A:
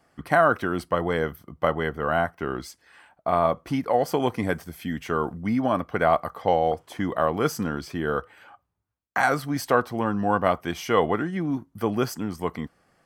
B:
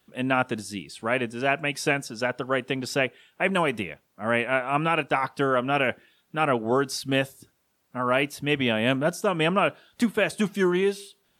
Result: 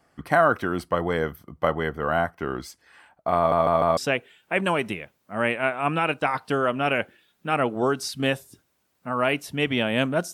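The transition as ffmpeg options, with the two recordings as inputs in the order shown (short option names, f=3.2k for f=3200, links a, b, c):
-filter_complex "[0:a]apad=whole_dur=10.33,atrim=end=10.33,asplit=4[a][b][c][d];[a]atrim=end=3.522[e];[b]atrim=start=3.368:end=3.522[f];[c]atrim=start=3.368:end=3.522[g];[d]atrim=start=3.368:end=3.522[h];[1:a]atrim=start=2.858:end=9.22[i];[e][f]acrossfade=d=0.004:c1=hsin:c2=hsin[j];[j][g]acrossfade=d=0.004:c1=hsin:c2=hsin[k];[k][h]acrossfade=d=0.004:c1=hsin:c2=hsin[l];[l][i]acrossfade=d=0.004:c1=hsin:c2=hsin"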